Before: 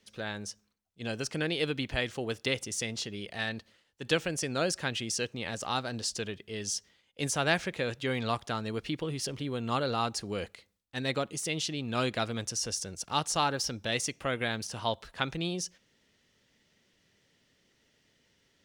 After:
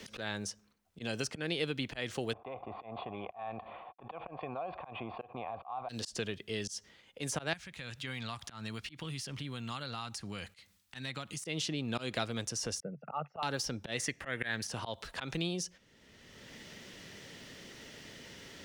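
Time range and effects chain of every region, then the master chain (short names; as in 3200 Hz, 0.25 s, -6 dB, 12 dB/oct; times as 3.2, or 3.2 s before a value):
2.33–5.89 G.711 law mismatch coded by A + vocal tract filter a + fast leveller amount 70%
7.53–11.45 HPF 49 Hz + bell 440 Hz -14 dB 1.6 oct + compressor 2.5:1, threshold -46 dBFS
12.8–13.43 formant sharpening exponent 2 + Chebyshev band-pass 140–2500 Hz, order 5 + comb 1.5 ms
13.98–14.68 bell 1800 Hz +14 dB 0.33 oct + upward compressor, threshold -41 dBFS
whole clip: auto swell 0.173 s; three-band squash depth 70%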